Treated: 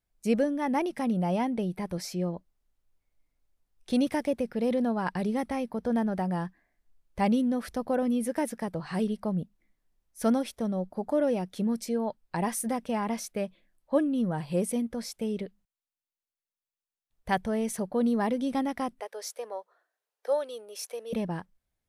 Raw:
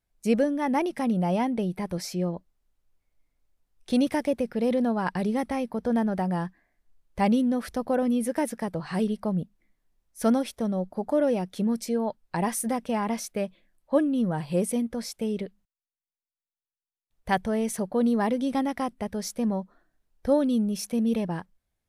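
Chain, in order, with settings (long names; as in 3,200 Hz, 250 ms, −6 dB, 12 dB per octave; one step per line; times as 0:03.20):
0:19.00–0:21.13: Chebyshev high-pass filter 440 Hz, order 4
level −2.5 dB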